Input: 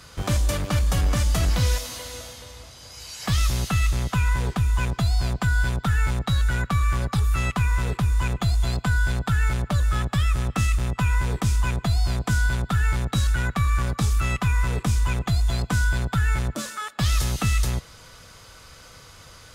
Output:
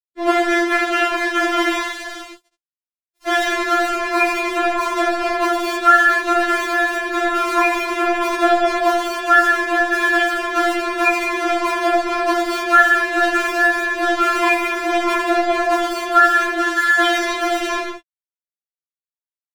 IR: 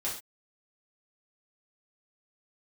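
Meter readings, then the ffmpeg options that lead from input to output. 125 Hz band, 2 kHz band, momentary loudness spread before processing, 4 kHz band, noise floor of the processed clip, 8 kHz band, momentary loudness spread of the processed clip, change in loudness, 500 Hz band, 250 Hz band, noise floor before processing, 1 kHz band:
below −35 dB, +14.5 dB, 4 LU, +6.5 dB, below −85 dBFS, +0.5 dB, 7 LU, +7.0 dB, +17.0 dB, +8.5 dB, −47 dBFS, +15.5 dB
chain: -filter_complex "[0:a]agate=range=-33dB:threshold=-36dB:ratio=3:detection=peak,highpass=frequency=170:poles=1,asplit=2[link_01][link_02];[link_02]adelay=14,volume=-11dB[link_03];[link_01][link_03]amix=inputs=2:normalize=0[link_04];[1:a]atrim=start_sample=2205,asetrate=24255,aresample=44100[link_05];[link_04][link_05]afir=irnorm=-1:irlink=0,adynamicequalizer=threshold=0.0158:dfrequency=1600:dqfactor=1.1:tfrequency=1600:tqfactor=1.1:attack=5:release=100:ratio=0.375:range=3.5:mode=boostabove:tftype=bell,lowpass=2500,aeval=exprs='sgn(val(0))*max(abs(val(0))-0.0299,0)':channel_layout=same,equalizer=frequency=400:width_type=o:width=2.3:gain=6.5,alimiter=limit=-6dB:level=0:latency=1:release=437,afftfilt=real='re*4*eq(mod(b,16),0)':imag='im*4*eq(mod(b,16),0)':win_size=2048:overlap=0.75,volume=8.5dB"

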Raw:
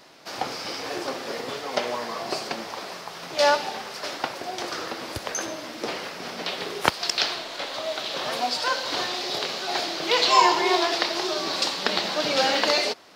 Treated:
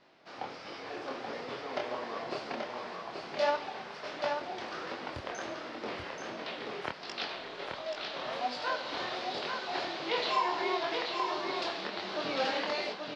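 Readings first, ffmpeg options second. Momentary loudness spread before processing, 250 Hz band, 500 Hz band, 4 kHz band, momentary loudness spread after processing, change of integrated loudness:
12 LU, −8.5 dB, −8.0 dB, −13.0 dB, 10 LU, −10.0 dB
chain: -filter_complex "[0:a]lowpass=3300,dynaudnorm=framelen=570:gausssize=3:maxgain=3dB,alimiter=limit=-9.5dB:level=0:latency=1:release=317,flanger=delay=20:depth=7.3:speed=1.4,asplit=2[link_01][link_02];[link_02]aecho=0:1:831:0.596[link_03];[link_01][link_03]amix=inputs=2:normalize=0,volume=-7.5dB"

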